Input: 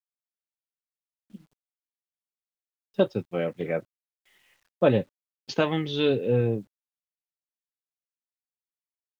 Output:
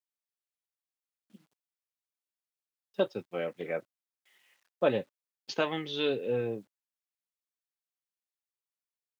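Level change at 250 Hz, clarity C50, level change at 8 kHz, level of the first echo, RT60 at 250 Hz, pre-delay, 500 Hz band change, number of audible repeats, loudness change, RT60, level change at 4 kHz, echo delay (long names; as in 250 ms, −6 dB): −9.0 dB, no reverb audible, can't be measured, no echo audible, no reverb audible, no reverb audible, −5.5 dB, no echo audible, −6.5 dB, no reverb audible, −3.0 dB, no echo audible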